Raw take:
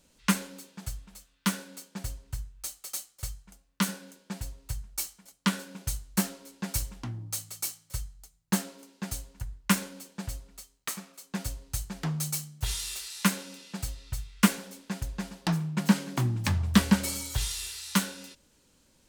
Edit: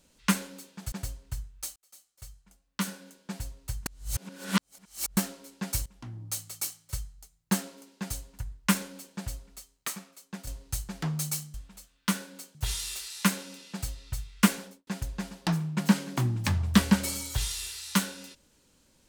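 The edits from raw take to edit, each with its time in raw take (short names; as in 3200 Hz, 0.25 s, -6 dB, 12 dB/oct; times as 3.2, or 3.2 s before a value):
0.92–1.93 move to 12.55
2.77–4.32 fade in
4.87–6.18 reverse
6.87–7.32 fade in, from -17.5 dB
10.91–11.48 fade out, to -9.5 dB
14.62–14.87 studio fade out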